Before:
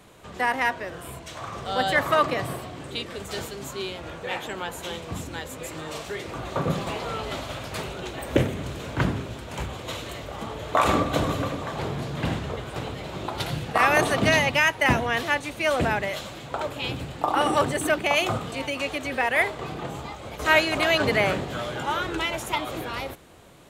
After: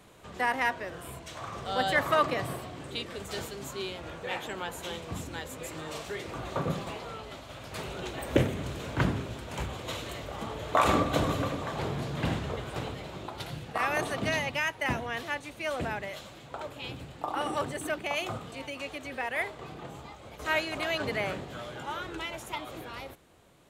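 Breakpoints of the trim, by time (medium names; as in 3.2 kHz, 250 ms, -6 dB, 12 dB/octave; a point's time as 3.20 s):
6.52 s -4 dB
7.41 s -12.5 dB
7.96 s -3 dB
12.82 s -3 dB
13.37 s -9.5 dB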